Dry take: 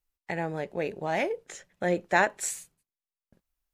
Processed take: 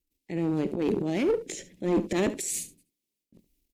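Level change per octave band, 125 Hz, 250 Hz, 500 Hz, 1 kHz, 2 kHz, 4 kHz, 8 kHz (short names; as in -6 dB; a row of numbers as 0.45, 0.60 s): +4.0, +8.5, +1.5, -9.5, -10.5, +1.5, +2.0 dB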